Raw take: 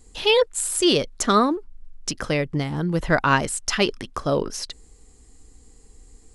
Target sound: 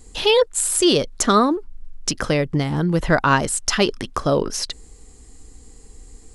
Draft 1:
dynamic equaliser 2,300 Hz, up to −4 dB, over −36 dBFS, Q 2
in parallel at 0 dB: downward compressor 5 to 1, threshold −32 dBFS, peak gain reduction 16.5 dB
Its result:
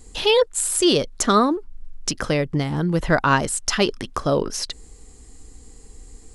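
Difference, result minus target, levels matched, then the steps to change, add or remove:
downward compressor: peak gain reduction +5.5 dB
change: downward compressor 5 to 1, threshold −25 dBFS, peak gain reduction 10.5 dB

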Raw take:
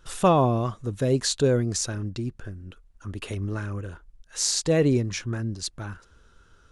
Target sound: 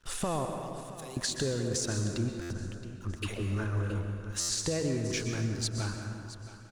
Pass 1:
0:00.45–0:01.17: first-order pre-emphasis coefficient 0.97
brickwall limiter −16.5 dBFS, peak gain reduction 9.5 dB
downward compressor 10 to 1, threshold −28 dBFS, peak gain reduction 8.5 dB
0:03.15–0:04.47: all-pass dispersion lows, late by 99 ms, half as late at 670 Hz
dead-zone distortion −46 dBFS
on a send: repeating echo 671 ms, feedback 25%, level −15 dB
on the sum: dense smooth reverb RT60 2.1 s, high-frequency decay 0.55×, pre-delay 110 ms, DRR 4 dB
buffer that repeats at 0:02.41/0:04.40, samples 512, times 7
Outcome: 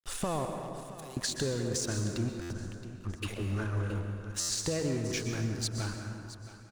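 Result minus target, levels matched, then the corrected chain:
dead-zone distortion: distortion +8 dB
0:00.45–0:01.17: first-order pre-emphasis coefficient 0.97
brickwall limiter −16.5 dBFS, peak gain reduction 9.5 dB
downward compressor 10 to 1, threshold −28 dBFS, peak gain reduction 8.5 dB
0:03.15–0:04.47: all-pass dispersion lows, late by 99 ms, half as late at 670 Hz
dead-zone distortion −55 dBFS
on a send: repeating echo 671 ms, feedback 25%, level −15 dB
on the sum: dense smooth reverb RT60 2.1 s, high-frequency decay 0.55×, pre-delay 110 ms, DRR 4 dB
buffer that repeats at 0:02.41/0:04.40, samples 512, times 7

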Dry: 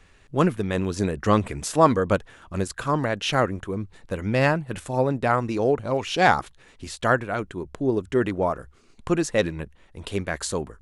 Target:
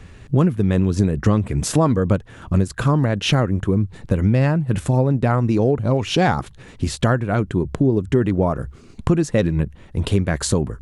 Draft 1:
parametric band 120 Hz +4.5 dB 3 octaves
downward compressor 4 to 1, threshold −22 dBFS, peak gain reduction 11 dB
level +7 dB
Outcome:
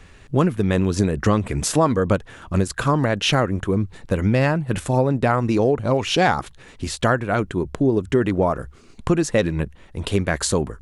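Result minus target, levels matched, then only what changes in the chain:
125 Hz band −3.0 dB
change: parametric band 120 Hz +13.5 dB 3 octaves

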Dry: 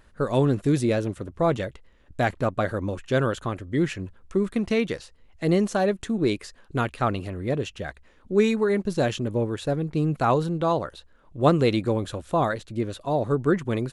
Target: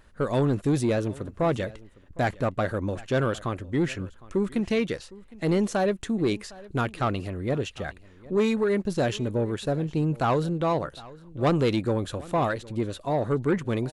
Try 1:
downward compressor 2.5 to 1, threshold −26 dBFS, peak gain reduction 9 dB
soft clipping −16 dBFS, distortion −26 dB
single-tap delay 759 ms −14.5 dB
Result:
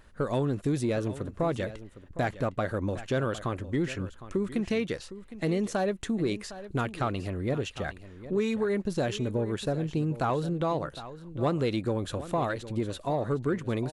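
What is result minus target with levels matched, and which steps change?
downward compressor: peak gain reduction +9 dB; echo-to-direct +6.5 dB
change: single-tap delay 759 ms −21 dB
remove: downward compressor 2.5 to 1, threshold −26 dBFS, peak gain reduction 9 dB

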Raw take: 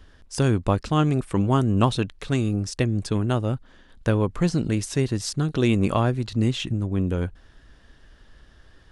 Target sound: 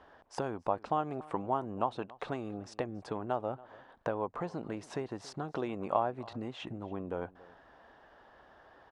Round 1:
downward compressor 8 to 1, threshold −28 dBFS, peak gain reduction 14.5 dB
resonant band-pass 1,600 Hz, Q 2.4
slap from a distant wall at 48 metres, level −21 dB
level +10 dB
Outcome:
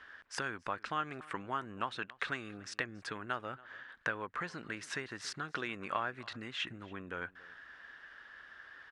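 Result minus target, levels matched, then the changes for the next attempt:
2,000 Hz band +13.5 dB
change: resonant band-pass 790 Hz, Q 2.4

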